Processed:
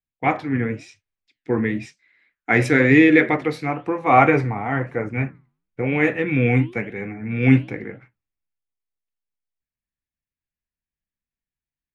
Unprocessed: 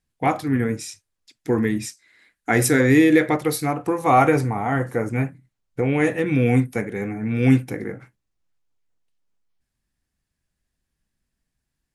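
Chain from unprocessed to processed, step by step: low-pass 3.5 kHz 12 dB/octave; peaking EQ 2.3 kHz +7 dB 0.71 oct; flange 1 Hz, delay 1.8 ms, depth 9.1 ms, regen -89%; three bands expanded up and down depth 40%; trim +4 dB

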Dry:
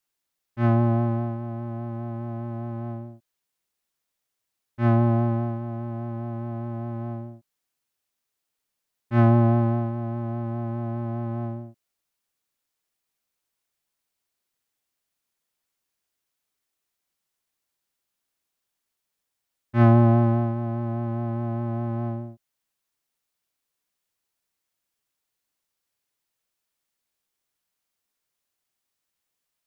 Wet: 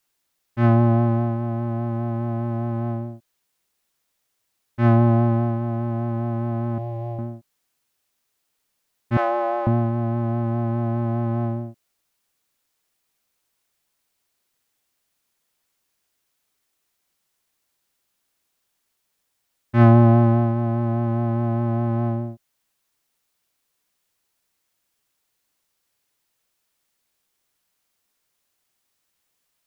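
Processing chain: 9.17–9.67 s: Chebyshev high-pass 390 Hz, order 5; in parallel at -1 dB: compression, threshold -30 dBFS, peak gain reduction 16 dB; 6.78–7.19 s: on the sum: static phaser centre 570 Hz, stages 4; trim +2 dB

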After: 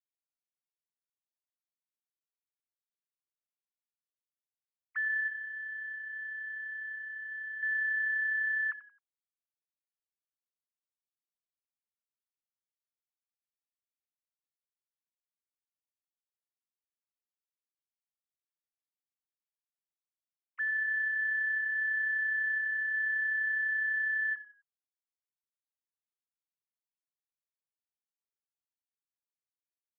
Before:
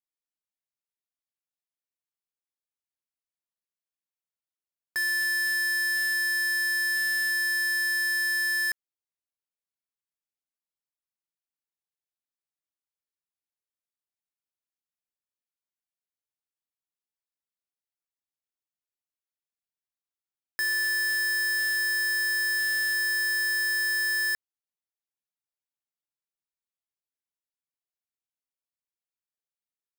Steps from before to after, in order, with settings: formants replaced by sine waves; 5.28–7.63 s: peaking EQ 2 kHz -9.5 dB 1.6 oct; frequency-shifting echo 88 ms, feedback 31%, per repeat -32 Hz, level -15 dB; trim -5 dB

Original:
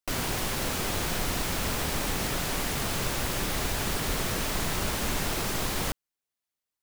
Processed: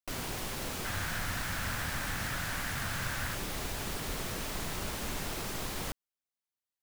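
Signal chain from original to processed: 0.85–3.35 s: fifteen-band graphic EQ 100 Hz +7 dB, 400 Hz -8 dB, 1.6 kHz +10 dB; trim -7.5 dB

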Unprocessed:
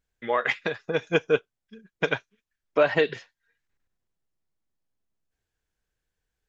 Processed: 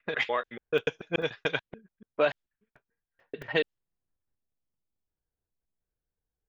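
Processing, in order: slices played last to first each 145 ms, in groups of 5; level-controlled noise filter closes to 910 Hz, open at -19.5 dBFS; dynamic bell 3.4 kHz, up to +6 dB, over -46 dBFS, Q 1.5; crackling interface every 0.22 s, samples 128, zero, from 0.78 s; trim -5 dB

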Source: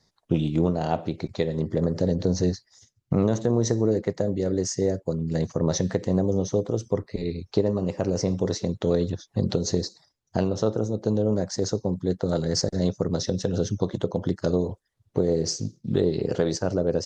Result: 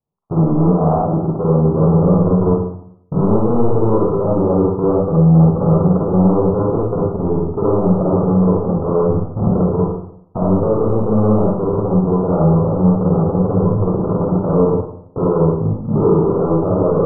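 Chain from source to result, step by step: waveshaping leveller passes 5; steep low-pass 1.3 kHz 96 dB/octave; reverberation RT60 0.70 s, pre-delay 38 ms, DRR -5.5 dB; trim -8 dB

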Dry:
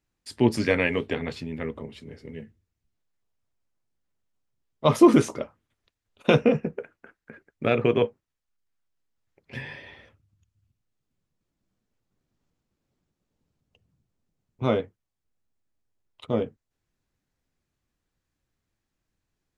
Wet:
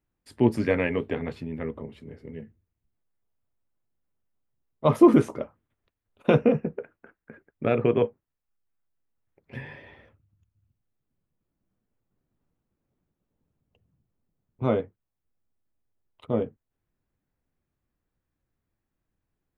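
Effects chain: peaking EQ 5.7 kHz -13 dB 2.2 oct

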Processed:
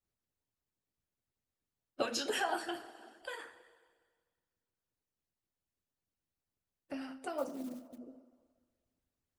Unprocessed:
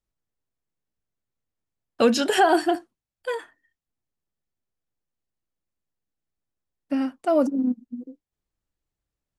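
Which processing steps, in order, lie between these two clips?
two-slope reverb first 0.41 s, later 1.6 s, from -17 dB, DRR 1 dB; 7.38–7.98 s: short-mantissa float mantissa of 4-bit; harmonic-percussive split harmonic -17 dB; compression 1.5:1, threshold -49 dBFS, peak gain reduction 11 dB

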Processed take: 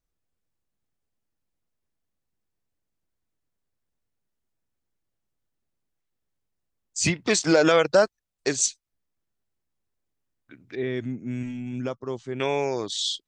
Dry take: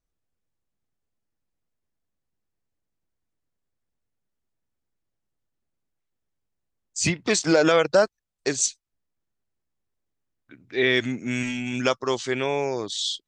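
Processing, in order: 10.75–12.40 s: FFT filter 150 Hz 0 dB, 4.5 kHz -21 dB, 8.7 kHz -18 dB

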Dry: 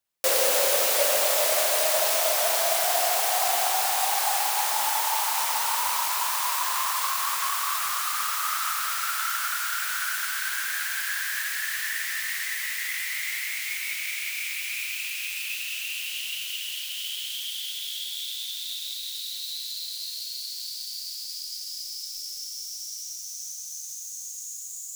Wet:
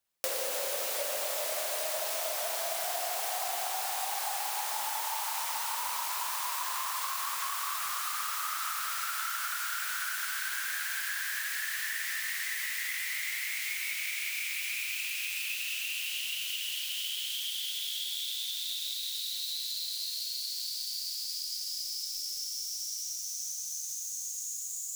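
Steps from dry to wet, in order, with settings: 5.10–5.68 s: high-pass 350 Hz -> 620 Hz 12 dB/octave; compression 6:1, threshold -31 dBFS, peak gain reduction 12 dB

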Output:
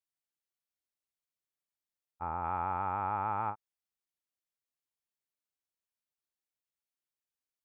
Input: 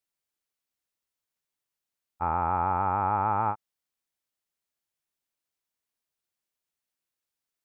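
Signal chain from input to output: 2.44–3.50 s: treble shelf 2.3 kHz +12 dB; trim -9 dB

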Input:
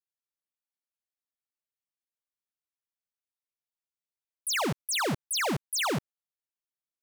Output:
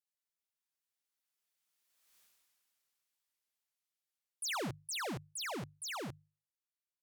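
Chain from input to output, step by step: Doppler pass-by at 2.19 s, 37 m/s, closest 4 m; hum notches 50/100/150 Hz; tape noise reduction on one side only encoder only; trim +17 dB

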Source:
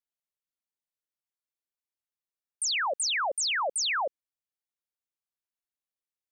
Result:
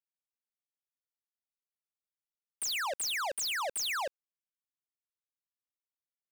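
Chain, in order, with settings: waveshaping leveller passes 5; trim -7.5 dB

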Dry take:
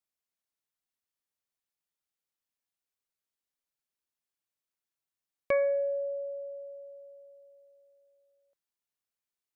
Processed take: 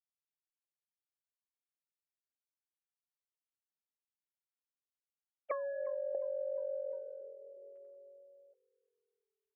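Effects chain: formants replaced by sine waves; 5.51–6.15 s: resonant high-pass 1.1 kHz, resonance Q 6.7; gain riding within 4 dB 0.5 s; frequency-shifting echo 354 ms, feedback 53%, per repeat -40 Hz, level -23 dB; compression 12:1, threshold -40 dBFS, peak gain reduction 11 dB; trim +6 dB

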